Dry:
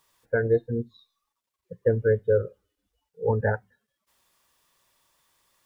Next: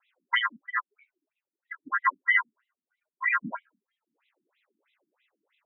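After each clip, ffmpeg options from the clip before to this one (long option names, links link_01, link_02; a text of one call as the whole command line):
ffmpeg -i in.wav -af "aeval=exprs='val(0)*sin(2*PI*1500*n/s)':channel_layout=same,afftfilt=real='re*between(b*sr/1024,230*pow(2900/230,0.5+0.5*sin(2*PI*3.1*pts/sr))/1.41,230*pow(2900/230,0.5+0.5*sin(2*PI*3.1*pts/sr))*1.41)':imag='im*between(b*sr/1024,230*pow(2900/230,0.5+0.5*sin(2*PI*3.1*pts/sr))/1.41,230*pow(2900/230,0.5+0.5*sin(2*PI*3.1*pts/sr))*1.41)':win_size=1024:overlap=0.75,volume=6dB" out.wav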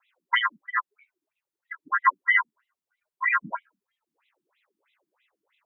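ffmpeg -i in.wav -af "equalizer=frequency=100:width_type=o:width=0.67:gain=5,equalizer=frequency=250:width_type=o:width=0.67:gain=-10,equalizer=frequency=1000:width_type=o:width=0.67:gain=4,volume=1.5dB" out.wav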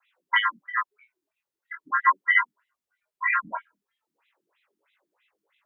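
ffmpeg -i in.wav -filter_complex "[0:a]acrossover=split=340|820|1200[link_01][link_02][link_03][link_04];[link_01]alimiter=level_in=16.5dB:limit=-24dB:level=0:latency=1:release=188,volume=-16.5dB[link_05];[link_05][link_02][link_03][link_04]amix=inputs=4:normalize=0,flanger=delay=19.5:depth=5.3:speed=0.37,volume=3.5dB" out.wav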